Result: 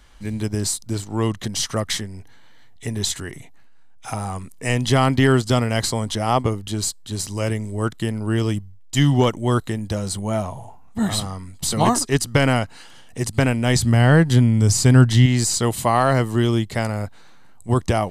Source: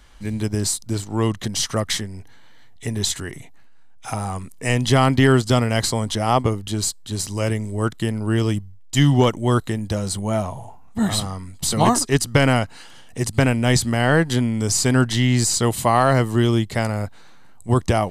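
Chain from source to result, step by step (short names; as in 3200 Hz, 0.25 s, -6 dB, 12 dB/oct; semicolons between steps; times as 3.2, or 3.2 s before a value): 13.79–15.26 bell 100 Hz +10 dB 1.9 oct; gain -1 dB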